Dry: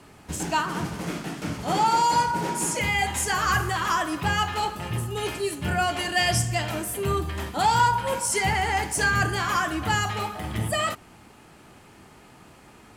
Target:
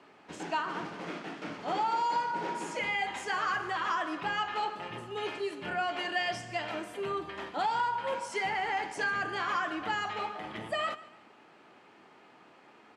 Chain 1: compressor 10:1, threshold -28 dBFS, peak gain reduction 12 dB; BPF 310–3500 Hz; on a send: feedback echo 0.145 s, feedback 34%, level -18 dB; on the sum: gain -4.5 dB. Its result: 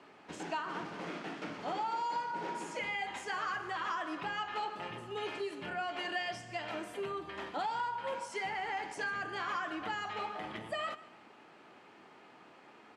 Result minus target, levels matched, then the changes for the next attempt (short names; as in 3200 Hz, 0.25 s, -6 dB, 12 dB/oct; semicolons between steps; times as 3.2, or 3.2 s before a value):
compressor: peak gain reduction +6 dB
change: compressor 10:1, threshold -21.5 dBFS, peak gain reduction 6 dB